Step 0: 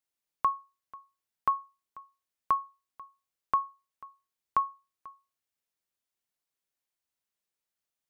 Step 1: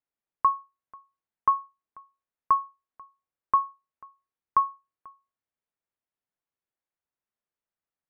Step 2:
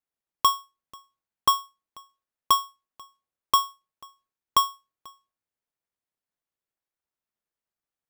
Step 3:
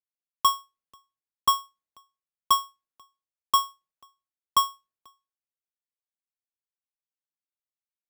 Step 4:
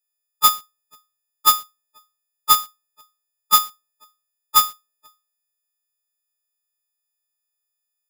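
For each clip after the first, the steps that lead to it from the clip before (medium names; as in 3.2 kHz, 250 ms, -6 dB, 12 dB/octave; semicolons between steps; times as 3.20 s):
dynamic bell 1 kHz, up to +6 dB, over -39 dBFS, Q 1.3; low-pass 1.8 kHz 12 dB/octave
square wave that keeps the level; trim -1.5 dB
three bands expanded up and down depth 40%; trim -3.5 dB
partials quantised in pitch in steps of 6 st; in parallel at -12 dB: companded quantiser 2-bit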